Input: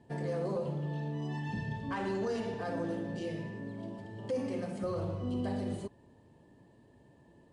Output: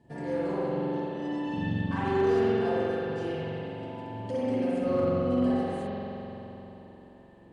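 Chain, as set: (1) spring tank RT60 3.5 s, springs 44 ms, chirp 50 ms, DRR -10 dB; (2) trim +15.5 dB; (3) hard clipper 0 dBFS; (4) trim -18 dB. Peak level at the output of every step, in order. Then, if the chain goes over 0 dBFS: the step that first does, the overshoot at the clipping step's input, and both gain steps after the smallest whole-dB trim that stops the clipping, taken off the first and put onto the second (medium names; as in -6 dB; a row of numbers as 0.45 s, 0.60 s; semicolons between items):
-12.0 dBFS, +3.5 dBFS, 0.0 dBFS, -18.0 dBFS; step 2, 3.5 dB; step 2 +11.5 dB, step 4 -14 dB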